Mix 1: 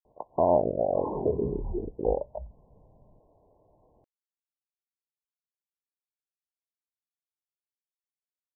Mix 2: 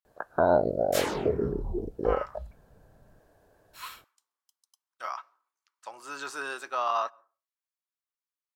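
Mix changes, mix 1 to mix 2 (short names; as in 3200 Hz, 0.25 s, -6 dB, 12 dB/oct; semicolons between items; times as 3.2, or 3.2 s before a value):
speech: unmuted; master: remove brick-wall FIR low-pass 1100 Hz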